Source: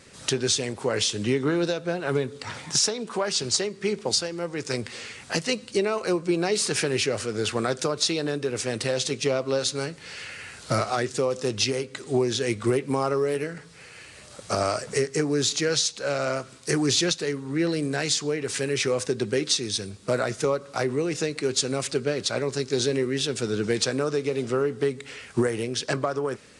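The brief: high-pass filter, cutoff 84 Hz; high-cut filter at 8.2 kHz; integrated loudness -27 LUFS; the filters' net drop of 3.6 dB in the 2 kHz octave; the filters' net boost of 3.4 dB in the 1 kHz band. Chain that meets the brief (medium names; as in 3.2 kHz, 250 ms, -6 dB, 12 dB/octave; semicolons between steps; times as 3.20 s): high-pass 84 Hz; low-pass 8.2 kHz; peaking EQ 1 kHz +7 dB; peaking EQ 2 kHz -7.5 dB; trim -1 dB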